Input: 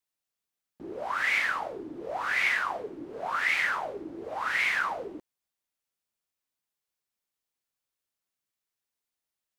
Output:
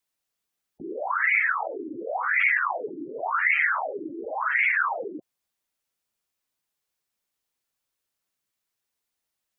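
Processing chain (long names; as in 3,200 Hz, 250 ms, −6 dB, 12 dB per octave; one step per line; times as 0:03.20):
0:01.66–0:02.23: Butterworth low-pass 1,400 Hz 48 dB per octave
gate on every frequency bin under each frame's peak −15 dB strong
level +5 dB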